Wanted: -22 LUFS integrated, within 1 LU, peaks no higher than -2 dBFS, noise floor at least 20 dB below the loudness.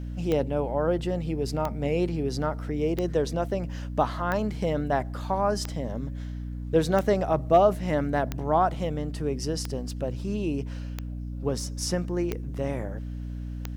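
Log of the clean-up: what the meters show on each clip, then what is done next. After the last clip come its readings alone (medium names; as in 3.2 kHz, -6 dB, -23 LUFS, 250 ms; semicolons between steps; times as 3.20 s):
clicks found 11; hum 60 Hz; highest harmonic 300 Hz; hum level -32 dBFS; loudness -28.0 LUFS; peak level -9.0 dBFS; loudness target -22.0 LUFS
-> de-click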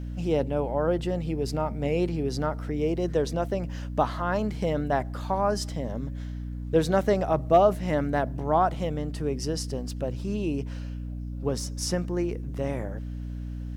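clicks found 0; hum 60 Hz; highest harmonic 300 Hz; hum level -32 dBFS
-> de-hum 60 Hz, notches 5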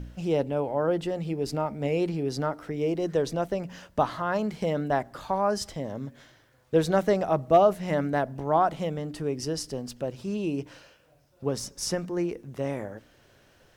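hum not found; loudness -28.0 LUFS; peak level -9.5 dBFS; loudness target -22.0 LUFS
-> trim +6 dB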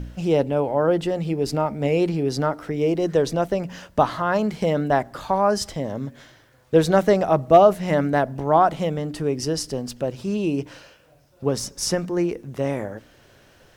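loudness -22.0 LUFS; peak level -3.5 dBFS; noise floor -55 dBFS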